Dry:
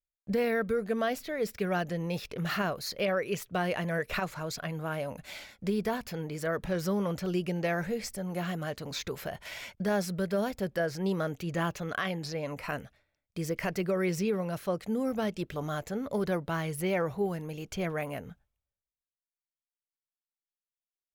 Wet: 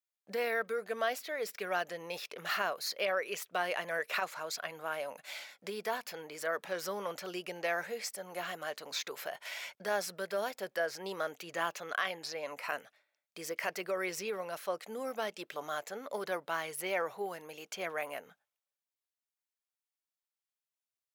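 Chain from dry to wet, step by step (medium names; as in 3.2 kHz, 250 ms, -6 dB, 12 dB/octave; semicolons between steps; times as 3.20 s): high-pass 610 Hz 12 dB/octave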